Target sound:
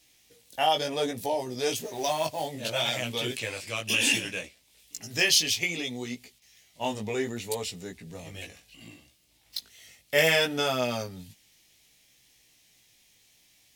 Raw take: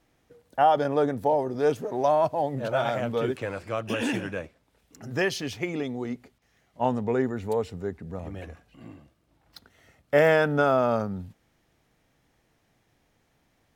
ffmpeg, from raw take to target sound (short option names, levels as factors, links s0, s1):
-filter_complex "[0:a]aexciter=amount=7.3:drive=6.3:freq=2100,asettb=1/sr,asplit=3[s0][s1][s2];[s0]atrim=end=1.794[s3];[s1]atrim=start=1.79:end=2.48,asetpts=PTS-STARTPTS,afade=t=in:d=0.004:c=qsin,afade=t=out:st=0.686:d=0.004:c=qsin,acrusher=bits=4:mode=log:mix=0:aa=0.000001[s4];[s2]atrim=start=2.476[s5];[s3][s4]acrossfade=d=0.004:c1=hsin:c2=qsin[s6];[s6][s5]acrossfade=d=0.004:c1=qsin:c2=hsin,flanger=delay=16:depth=3.1:speed=0.65,volume=0.708"